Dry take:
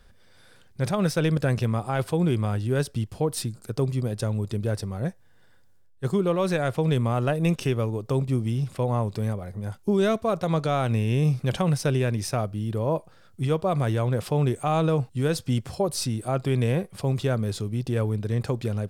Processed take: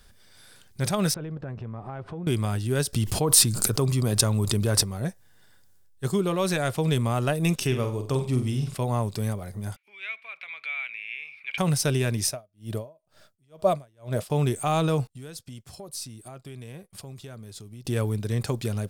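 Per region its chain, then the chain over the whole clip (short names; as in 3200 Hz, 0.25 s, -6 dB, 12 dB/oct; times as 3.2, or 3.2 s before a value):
1.14–2.27 G.711 law mismatch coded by mu + LPF 1300 Hz + compressor 4:1, threshold -33 dBFS
2.93–4.83 dynamic EQ 1100 Hz, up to +6 dB, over -52 dBFS, Q 2.8 + fast leveller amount 70%
7.67–8.74 high shelf 10000 Hz -10 dB + flutter echo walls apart 8.1 m, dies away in 0.37 s
9.76–11.58 compressor 3:1, threshold -26 dBFS + resonant high-pass 2300 Hz, resonance Q 14 + air absorption 480 m
12.26–14.3 bell 620 Hz +13.5 dB 0.22 oct + dB-linear tremolo 2.1 Hz, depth 40 dB
15.07–17.85 compressor 4:1, threshold -40 dBFS + expander -41 dBFS
whole clip: high shelf 3700 Hz +11.5 dB; notch 510 Hz, Q 12; gain -1 dB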